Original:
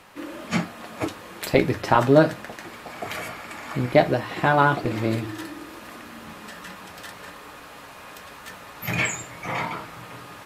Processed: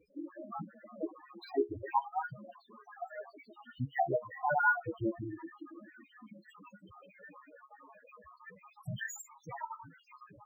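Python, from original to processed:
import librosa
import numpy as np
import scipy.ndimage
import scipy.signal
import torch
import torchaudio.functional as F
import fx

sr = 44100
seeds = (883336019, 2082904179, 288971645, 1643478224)

y = fx.spec_dropout(x, sr, seeds[0], share_pct=64)
y = fx.dynamic_eq(y, sr, hz=170.0, q=0.83, threshold_db=-40.0, ratio=4.0, max_db=-4)
y = fx.comb_fb(y, sr, f0_hz=69.0, decay_s=0.17, harmonics='all', damping=0.0, mix_pct=60)
y = fx.spec_topn(y, sr, count=4)
y = np.interp(np.arange(len(y)), np.arange(len(y))[::2], y[::2])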